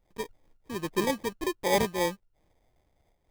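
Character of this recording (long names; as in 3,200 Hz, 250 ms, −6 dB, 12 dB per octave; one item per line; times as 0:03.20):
aliases and images of a low sample rate 1,400 Hz, jitter 0%
amplitude modulation by smooth noise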